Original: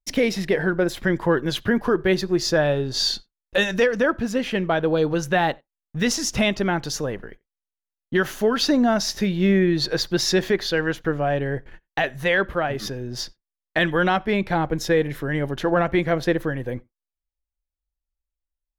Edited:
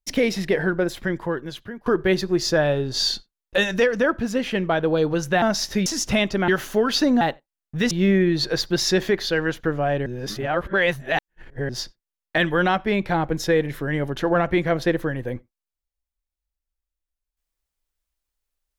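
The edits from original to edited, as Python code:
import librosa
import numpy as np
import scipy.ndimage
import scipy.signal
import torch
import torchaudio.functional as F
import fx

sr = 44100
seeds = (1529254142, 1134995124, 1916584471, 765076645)

y = fx.edit(x, sr, fx.fade_out_to(start_s=0.65, length_s=1.21, floor_db=-22.5),
    fx.swap(start_s=5.42, length_s=0.7, other_s=8.88, other_length_s=0.44),
    fx.cut(start_s=6.74, length_s=1.41),
    fx.reverse_span(start_s=11.47, length_s=1.63), tone=tone)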